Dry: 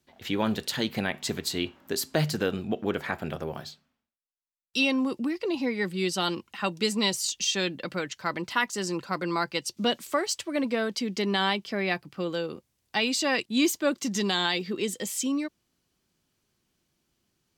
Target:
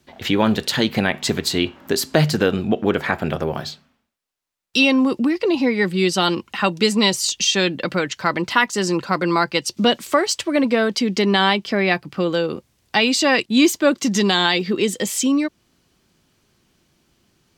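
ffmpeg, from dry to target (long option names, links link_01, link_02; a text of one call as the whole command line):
ffmpeg -i in.wav -filter_complex "[0:a]highshelf=frequency=6900:gain=-6.5,asplit=2[link_01][link_02];[link_02]acompressor=threshold=-37dB:ratio=6,volume=-0.5dB[link_03];[link_01][link_03]amix=inputs=2:normalize=0,volume=8dB" out.wav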